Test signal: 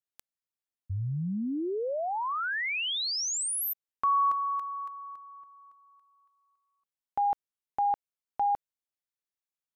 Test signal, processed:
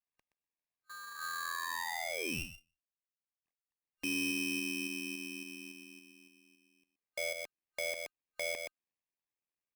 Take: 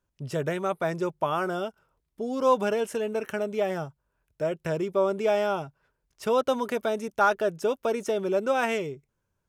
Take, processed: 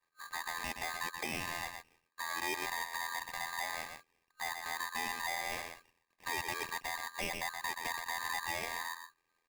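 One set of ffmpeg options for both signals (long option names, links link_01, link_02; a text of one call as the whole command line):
ffmpeg -i in.wav -filter_complex "[0:a]asplit=2[link_01][link_02];[link_02]adelay=122.4,volume=-12dB,highshelf=frequency=4000:gain=-2.76[link_03];[link_01][link_03]amix=inputs=2:normalize=0,tremolo=f=84:d=0.947,asplit=2[link_04][link_05];[link_05]alimiter=limit=-22.5dB:level=0:latency=1:release=363,volume=-0.5dB[link_06];[link_04][link_06]amix=inputs=2:normalize=0,adynamicequalizer=threshold=0.00708:dfrequency=1100:dqfactor=3.6:tfrequency=1100:tqfactor=3.6:attack=5:release=100:ratio=0.375:range=2.5:mode=boostabove:tftype=bell,asoftclip=type=tanh:threshold=-20.5dB,acompressor=threshold=-45dB:ratio=2:attack=0.82:release=154:detection=rms,afftfilt=real='re*between(b*sr/4096,160,1400)':imag='im*between(b*sr/4096,160,1400)':win_size=4096:overlap=0.75,aeval=exprs='val(0)*sgn(sin(2*PI*1400*n/s))':channel_layout=same,volume=2dB" out.wav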